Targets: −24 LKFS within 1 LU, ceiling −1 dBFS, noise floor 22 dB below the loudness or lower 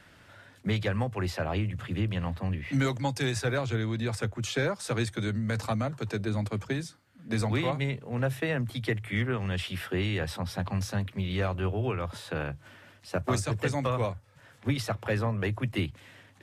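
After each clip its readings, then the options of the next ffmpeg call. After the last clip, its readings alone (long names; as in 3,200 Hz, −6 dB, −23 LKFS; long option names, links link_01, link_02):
integrated loudness −31.0 LKFS; sample peak −16.0 dBFS; target loudness −24.0 LKFS
→ -af "volume=7dB"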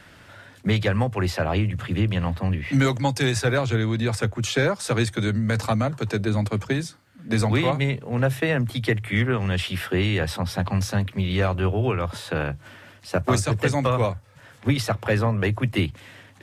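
integrated loudness −24.0 LKFS; sample peak −9.0 dBFS; background noise floor −50 dBFS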